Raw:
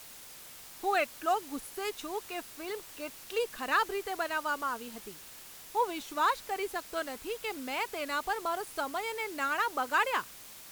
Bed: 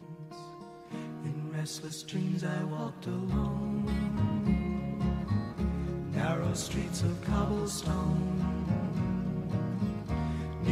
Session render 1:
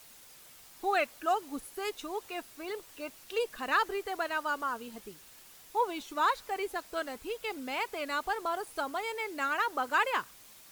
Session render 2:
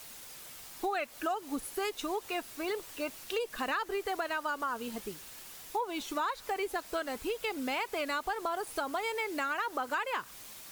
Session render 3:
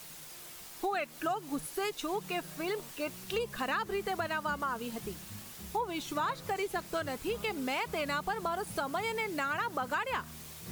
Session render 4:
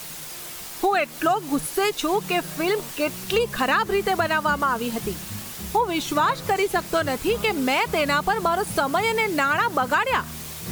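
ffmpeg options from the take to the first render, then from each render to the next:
ffmpeg -i in.wav -af "afftdn=noise_reduction=6:noise_floor=-50" out.wav
ffmpeg -i in.wav -filter_complex "[0:a]asplit=2[link_01][link_02];[link_02]alimiter=level_in=3.5dB:limit=-24dB:level=0:latency=1:release=220,volume=-3.5dB,volume=0dB[link_03];[link_01][link_03]amix=inputs=2:normalize=0,acompressor=threshold=-30dB:ratio=6" out.wav
ffmpeg -i in.wav -i bed.wav -filter_complex "[1:a]volume=-18dB[link_01];[0:a][link_01]amix=inputs=2:normalize=0" out.wav
ffmpeg -i in.wav -af "volume=12dB" out.wav

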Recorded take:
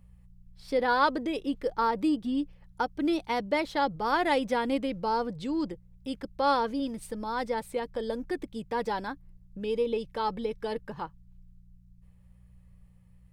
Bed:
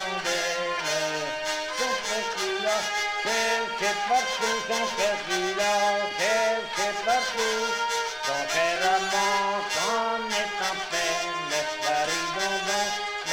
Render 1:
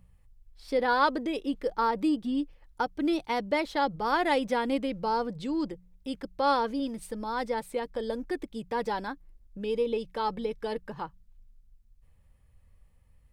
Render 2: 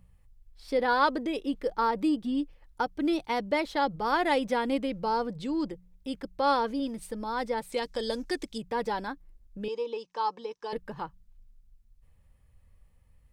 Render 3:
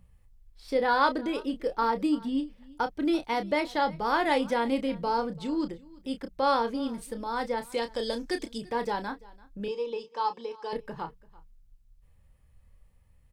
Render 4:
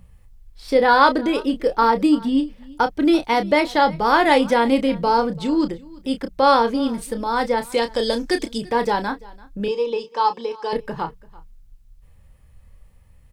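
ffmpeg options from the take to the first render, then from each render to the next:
ffmpeg -i in.wav -af "bandreject=frequency=60:width_type=h:width=4,bandreject=frequency=120:width_type=h:width=4,bandreject=frequency=180:width_type=h:width=4" out.wav
ffmpeg -i in.wav -filter_complex "[0:a]asettb=1/sr,asplit=3[link_01][link_02][link_03];[link_01]atrim=end=7.724[link_04];[link_02]atrim=start=7.72:end=8.58,asetpts=PTS-STARTPTS,afade=type=in:duration=0.004:curve=qsin,afade=type=out:start_time=0.856:duration=0.004:curve=qsin,equalizer=frequency=6000:width_type=o:width=2:gain=14.5[link_05];[link_03]atrim=start=8.576[link_06];[link_04][link_05]acrossfade=duration=0.004:curve1=hsin:curve2=qsin[link_07];[link_07][link_06]acrossfade=duration=0.004:curve1=qsin:curve2=hsin,asettb=1/sr,asplit=3[link_08][link_09][link_10];[link_08]atrim=end=9.684[link_11];[link_09]atrim=start=9.68:end=10.73,asetpts=PTS-STARTPTS,afade=type=in:duration=0.004:curve=qsin,afade=type=out:start_time=1.046:duration=0.004:curve=qsin,highpass=490,equalizer=frequency=620:width_type=q:width=4:gain=-8,equalizer=frequency=1000:width_type=q:width=4:gain=8,equalizer=frequency=1400:width_type=q:width=4:gain=-5,equalizer=frequency=2100:width_type=q:width=4:gain=-9,equalizer=frequency=3500:width_type=q:width=4:gain=-5,equalizer=frequency=5900:width_type=q:width=4:gain=7,lowpass=frequency=7200:width=0.5412,lowpass=frequency=7200:width=1.3066[link_12];[link_10]atrim=start=10.726[link_13];[link_11][link_12]acrossfade=duration=0.004:curve1=hsin:curve2=qsin[link_14];[link_14][link_13]acrossfade=duration=0.004:curve1=qsin:curve2=hsin" out.wav
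ffmpeg -i in.wav -filter_complex "[0:a]asplit=2[link_01][link_02];[link_02]adelay=30,volume=-9dB[link_03];[link_01][link_03]amix=inputs=2:normalize=0,aecho=1:1:339:0.075" out.wav
ffmpeg -i in.wav -af "volume=10dB,alimiter=limit=-1dB:level=0:latency=1" out.wav

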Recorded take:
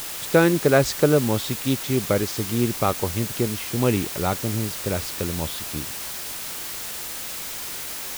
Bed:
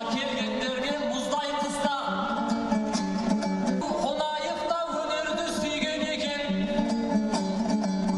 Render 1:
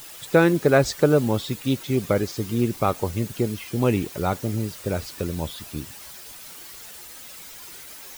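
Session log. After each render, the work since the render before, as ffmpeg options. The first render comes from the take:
ffmpeg -i in.wav -af "afftdn=noise_reduction=11:noise_floor=-33" out.wav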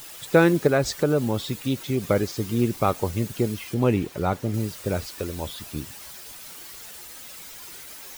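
ffmpeg -i in.wav -filter_complex "[0:a]asettb=1/sr,asplit=3[link_01][link_02][link_03];[link_01]atrim=end=0.674[link_04];[link_02]atrim=start=0.67:end=2.1,asetpts=PTS-STARTPTS,afade=type=in:duration=0.004:curve=qsin,afade=type=out:start_time=1.426:duration=0.004:curve=qsin,acompressor=threshold=-23dB:ratio=1.5:attack=3.2:release=140:knee=1:detection=peak[link_05];[link_03]atrim=start=2.096[link_06];[link_04][link_05]acrossfade=duration=0.004:curve1=hsin:curve2=qsin[link_07];[link_07][link_06]acrossfade=duration=0.004:curve1=qsin:curve2=hsin,asettb=1/sr,asplit=3[link_08][link_09][link_10];[link_08]atrim=end=3.744[link_11];[link_09]atrim=start=3.74:end=4.54,asetpts=PTS-STARTPTS,afade=type=in:duration=0.004:curve=qsin,afade=type=out:start_time=0.796:duration=0.004:curve=qsin,highshelf=frequency=4200:gain=-8[link_12];[link_10]atrim=start=4.536[link_13];[link_11][link_12]acrossfade=duration=0.004:curve1=hsin:curve2=qsin[link_14];[link_14][link_13]acrossfade=duration=0.004:curve1=qsin:curve2=hsin,asettb=1/sr,asplit=3[link_15][link_16][link_17];[link_15]atrim=end=5.064[link_18];[link_16]atrim=start=5.06:end=5.47,asetpts=PTS-STARTPTS,afade=type=in:duration=0.004:curve=qsin,afade=type=out:start_time=0.406:duration=0.004:curve=qsin,equalizer=frequency=150:width=1.2:gain=-9.5[link_19];[link_17]atrim=start=5.466[link_20];[link_18][link_19]acrossfade=duration=0.004:curve1=hsin:curve2=qsin[link_21];[link_21][link_20]acrossfade=duration=0.004:curve1=qsin:curve2=hsin" out.wav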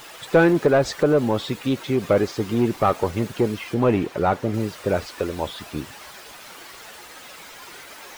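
ffmpeg -i in.wav -filter_complex "[0:a]asplit=2[link_01][link_02];[link_02]aeval=exprs='0.126*(abs(mod(val(0)/0.126+3,4)-2)-1)':channel_layout=same,volume=-8dB[link_03];[link_01][link_03]amix=inputs=2:normalize=0,asplit=2[link_04][link_05];[link_05]highpass=frequency=720:poles=1,volume=14dB,asoftclip=type=tanh:threshold=-4dB[link_06];[link_04][link_06]amix=inputs=2:normalize=0,lowpass=frequency=1200:poles=1,volume=-6dB" out.wav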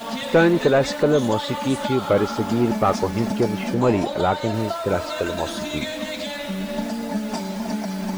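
ffmpeg -i in.wav -i bed.wav -filter_complex "[1:a]volume=-0.5dB[link_01];[0:a][link_01]amix=inputs=2:normalize=0" out.wav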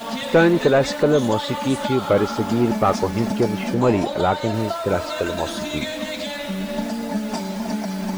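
ffmpeg -i in.wav -af "volume=1dB" out.wav

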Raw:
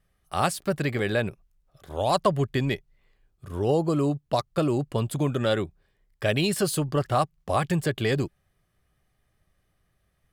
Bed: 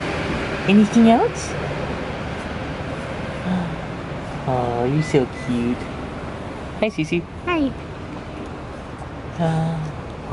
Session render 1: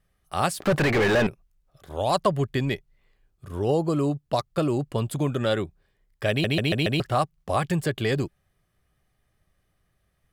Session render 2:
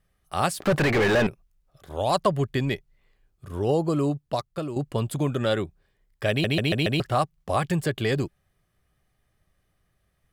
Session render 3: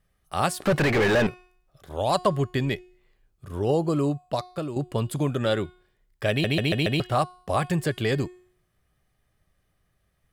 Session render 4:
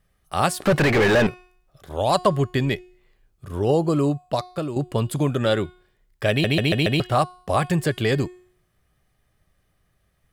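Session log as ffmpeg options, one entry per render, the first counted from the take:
ffmpeg -i in.wav -filter_complex "[0:a]asettb=1/sr,asplit=3[link_01][link_02][link_03];[link_01]atrim=end=0.604[link_04];[link_02]atrim=start=0.6:end=1.27,asetpts=PTS-STARTPTS,afade=type=in:duration=0.004:curve=qsin,afade=type=out:start_time=0.666:duration=0.004:curve=qsin,asplit=2[link_05][link_06];[link_06]highpass=frequency=720:poles=1,volume=33dB,asoftclip=type=tanh:threshold=-13dB[link_07];[link_05][link_07]amix=inputs=2:normalize=0,lowpass=frequency=1600:poles=1,volume=-6dB[link_08];[link_03]atrim=start=1.266[link_09];[link_04][link_08]acrossfade=duration=0.004:curve1=hsin:curve2=qsin[link_10];[link_10][link_09]acrossfade=duration=0.004:curve1=qsin:curve2=hsin,asplit=6[link_11][link_12][link_13][link_14][link_15][link_16];[link_11]atrim=end=6.442[link_17];[link_12]atrim=start=6.298:end=6.442[link_18];[link_13]atrim=start=6.298:end=6.442[link_19];[link_14]atrim=start=6.298:end=6.442[link_20];[link_15]atrim=start=6.298:end=6.442[link_21];[link_16]atrim=start=6.998[link_22];[link_17][link_18]acrossfade=duration=0.004:curve1=hsin:curve2=hsin[link_23];[link_23][link_19]acrossfade=duration=0.004:curve1=hsin:curve2=hsin[link_24];[link_24][link_20]acrossfade=duration=0.004:curve1=hsin:curve2=hsin[link_25];[link_25][link_21]acrossfade=duration=0.004:curve1=hsin:curve2=hsin[link_26];[link_26][link_22]acrossfade=duration=0.004:curve1=hsin:curve2=hsin" out.wav
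ffmpeg -i in.wav -filter_complex "[0:a]asplit=2[link_01][link_02];[link_01]atrim=end=4.76,asetpts=PTS-STARTPTS,afade=type=out:start_time=4.11:duration=0.65:silence=0.316228[link_03];[link_02]atrim=start=4.76,asetpts=PTS-STARTPTS,afade=type=in:duration=0.004:curve=hsin:silence=0.316228[link_04];[link_03][link_04]concat=n=2:v=0:a=1" out.wav
ffmpeg -i in.wav -af "bandreject=frequency=362.5:width_type=h:width=4,bandreject=frequency=725:width_type=h:width=4,bandreject=frequency=1087.5:width_type=h:width=4,bandreject=frequency=1450:width_type=h:width=4,bandreject=frequency=1812.5:width_type=h:width=4,bandreject=frequency=2175:width_type=h:width=4,bandreject=frequency=2537.5:width_type=h:width=4,bandreject=frequency=2900:width_type=h:width=4,bandreject=frequency=3262.5:width_type=h:width=4,bandreject=frequency=3625:width_type=h:width=4,bandreject=frequency=3987.5:width_type=h:width=4,bandreject=frequency=4350:width_type=h:width=4,bandreject=frequency=4712.5:width_type=h:width=4,bandreject=frequency=5075:width_type=h:width=4,bandreject=frequency=5437.5:width_type=h:width=4,bandreject=frequency=5800:width_type=h:width=4,bandreject=frequency=6162.5:width_type=h:width=4,bandreject=frequency=6525:width_type=h:width=4,bandreject=frequency=6887.5:width_type=h:width=4,bandreject=frequency=7250:width_type=h:width=4,bandreject=frequency=7612.5:width_type=h:width=4,bandreject=frequency=7975:width_type=h:width=4,bandreject=frequency=8337.5:width_type=h:width=4,bandreject=frequency=8700:width_type=h:width=4,bandreject=frequency=9062.5:width_type=h:width=4,bandreject=frequency=9425:width_type=h:width=4,bandreject=frequency=9787.5:width_type=h:width=4,bandreject=frequency=10150:width_type=h:width=4,bandreject=frequency=10512.5:width_type=h:width=4,bandreject=frequency=10875:width_type=h:width=4,bandreject=frequency=11237.5:width_type=h:width=4,bandreject=frequency=11600:width_type=h:width=4" out.wav
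ffmpeg -i in.wav -af "volume=3.5dB" out.wav

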